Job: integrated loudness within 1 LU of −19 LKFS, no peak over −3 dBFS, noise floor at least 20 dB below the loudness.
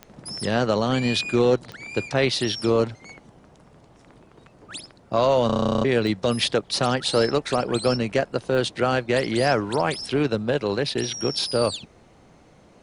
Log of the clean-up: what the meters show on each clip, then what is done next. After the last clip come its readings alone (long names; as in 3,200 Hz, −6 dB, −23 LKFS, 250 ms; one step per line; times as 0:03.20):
number of clicks 4; integrated loudness −23.0 LKFS; sample peak −8.0 dBFS; target loudness −19.0 LKFS
→ click removal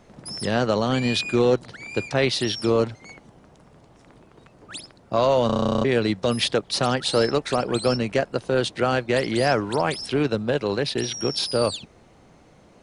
number of clicks 0; integrated loudness −23.0 LKFS; sample peak −8.0 dBFS; target loudness −19.0 LKFS
→ level +4 dB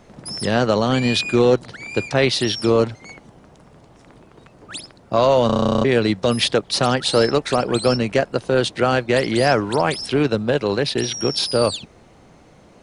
integrated loudness −19.0 LKFS; sample peak −4.0 dBFS; background noise floor −49 dBFS